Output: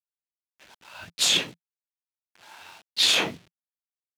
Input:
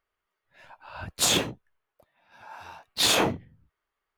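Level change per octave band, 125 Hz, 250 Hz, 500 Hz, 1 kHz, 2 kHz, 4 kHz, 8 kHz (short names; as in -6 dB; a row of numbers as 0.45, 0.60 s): -8.5, -6.5, -6.5, -6.0, +2.0, +3.5, -1.0 dB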